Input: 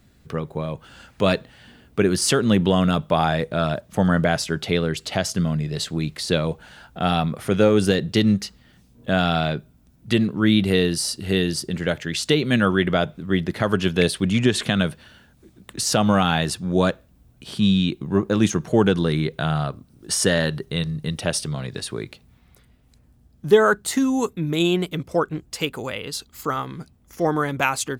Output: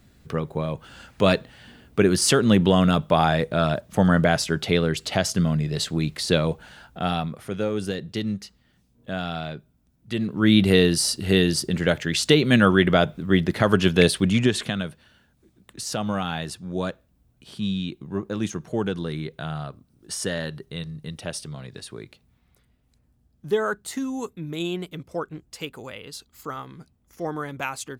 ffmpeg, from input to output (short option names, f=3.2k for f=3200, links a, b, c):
-af "volume=12dB,afade=t=out:st=6.48:d=1.02:silence=0.316228,afade=t=in:st=10.12:d=0.5:silence=0.266073,afade=t=out:st=14.11:d=0.72:silence=0.298538"